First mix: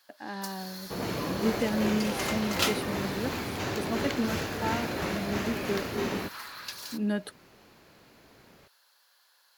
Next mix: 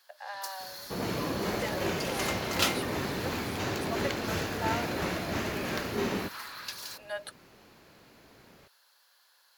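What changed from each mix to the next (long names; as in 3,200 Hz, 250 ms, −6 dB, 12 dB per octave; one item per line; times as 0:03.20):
speech: add Butterworth high-pass 500 Hz 96 dB per octave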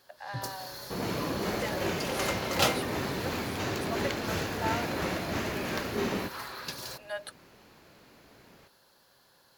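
first sound: remove high-pass filter 1,100 Hz 12 dB per octave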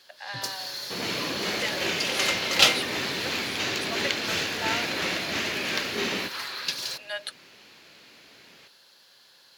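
master: add meter weighting curve D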